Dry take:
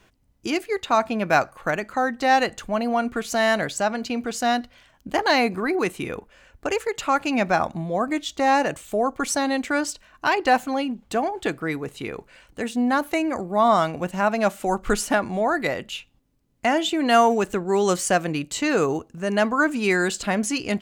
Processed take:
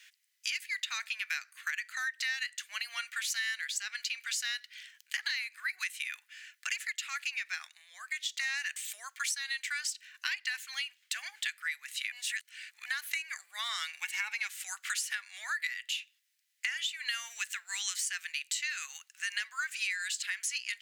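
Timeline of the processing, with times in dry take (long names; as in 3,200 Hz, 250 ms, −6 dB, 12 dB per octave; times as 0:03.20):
0:06.93–0:08.37: clip gain −6 dB
0:12.12–0:12.86: reverse
0:14.01–0:14.47: hollow resonant body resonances 390/870/2,200 Hz, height 17 dB
whole clip: Chebyshev high-pass filter 1,800 Hz, order 4; downward compressor 10 to 1, threshold −38 dBFS; level +6.5 dB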